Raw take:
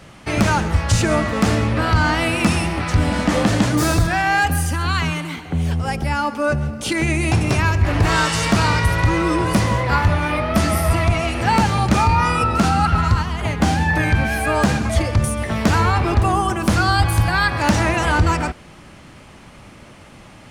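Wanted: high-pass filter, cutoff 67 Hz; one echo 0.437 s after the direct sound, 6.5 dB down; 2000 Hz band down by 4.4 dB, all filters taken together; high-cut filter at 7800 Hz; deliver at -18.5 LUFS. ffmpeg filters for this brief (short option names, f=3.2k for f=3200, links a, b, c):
-af "highpass=67,lowpass=7.8k,equalizer=f=2k:t=o:g=-6,aecho=1:1:437:0.473,volume=0.5dB"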